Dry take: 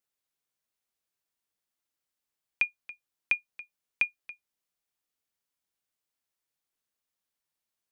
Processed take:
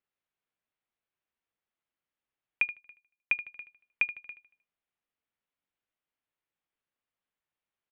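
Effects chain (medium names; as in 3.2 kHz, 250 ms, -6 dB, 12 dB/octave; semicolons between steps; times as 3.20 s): low-pass 3.1 kHz 24 dB/octave; on a send: feedback delay 77 ms, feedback 43%, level -14 dB; 2.76–3.35 s: on the sum: upward expansion 1.5:1, over -44 dBFS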